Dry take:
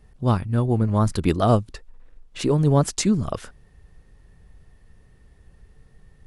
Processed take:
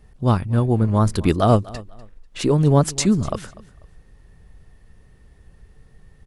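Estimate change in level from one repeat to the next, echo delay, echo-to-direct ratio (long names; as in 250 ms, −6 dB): −11.5 dB, 246 ms, −19.5 dB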